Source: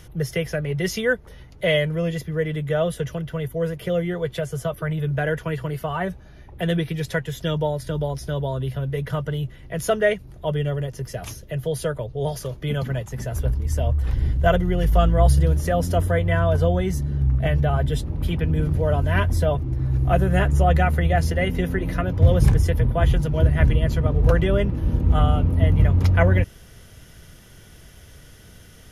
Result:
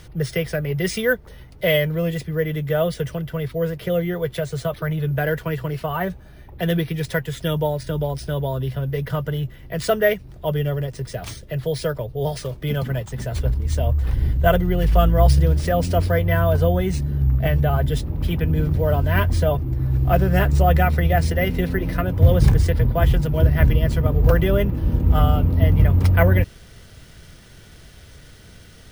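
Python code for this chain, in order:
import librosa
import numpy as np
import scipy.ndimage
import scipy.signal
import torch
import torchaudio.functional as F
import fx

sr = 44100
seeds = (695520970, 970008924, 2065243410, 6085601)

y = np.repeat(x[::3], 3)[:len(x)]
y = F.gain(torch.from_numpy(y), 1.5).numpy()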